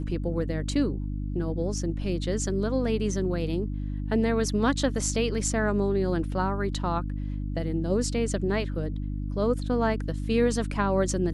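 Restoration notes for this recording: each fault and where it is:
hum 50 Hz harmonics 6 -31 dBFS

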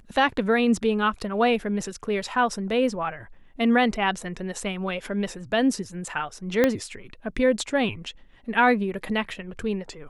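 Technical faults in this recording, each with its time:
6.64 pop -7 dBFS

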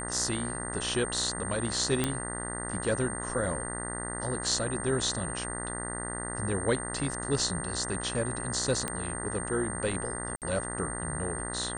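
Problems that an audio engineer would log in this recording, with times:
buzz 60 Hz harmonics 33 -38 dBFS
tone 8700 Hz -37 dBFS
2.04 pop -11 dBFS
8.88 pop -16 dBFS
10.36–10.42 gap 58 ms

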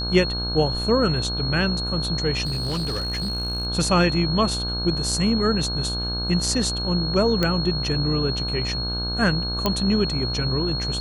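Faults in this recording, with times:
buzz 60 Hz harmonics 27 -29 dBFS
tone 4300 Hz -27 dBFS
2.45–3.67 clipped -22 dBFS
7.43 pop -8 dBFS
9.66 pop -6 dBFS

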